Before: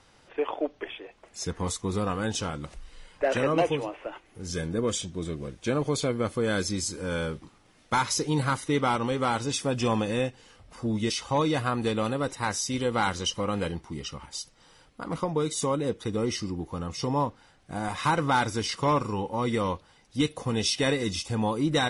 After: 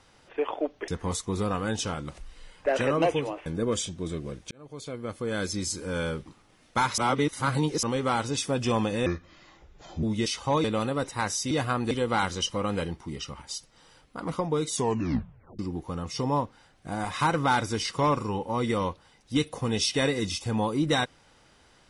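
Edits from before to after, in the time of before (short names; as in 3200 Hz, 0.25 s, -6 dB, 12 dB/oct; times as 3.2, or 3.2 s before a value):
0.88–1.44 cut
4.02–4.62 cut
5.67–6.91 fade in
8.14–8.99 reverse
10.22–10.87 speed 67%
11.48–11.88 move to 12.75
15.59 tape stop 0.84 s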